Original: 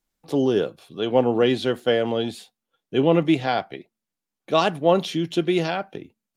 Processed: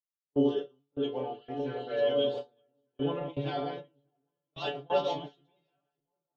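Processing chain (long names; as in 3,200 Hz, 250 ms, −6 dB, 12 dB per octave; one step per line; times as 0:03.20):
delay that plays each chunk backwards 200 ms, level −3.5 dB
mains-hum notches 60/120/180/240/300/360/420/480 Hz
stiff-string resonator 140 Hz, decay 0.37 s, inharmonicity 0.002
on a send: echo whose low-pass opens from repeat to repeat 595 ms, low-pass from 750 Hz, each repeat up 1 octave, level −6 dB
on the sum: noise gate with hold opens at −24 dBFS
flat-topped bell 4,800 Hz +14 dB
healed spectral selection 0:01.20–0:01.96, 2,600–5,200 Hz both
dynamic equaliser 520 Hz, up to +7 dB, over −44 dBFS, Q 0.97
low-pass that shuts in the quiet parts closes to 1,500 Hz, open at −5.5 dBFS
multiband upward and downward expander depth 70%
level −4 dB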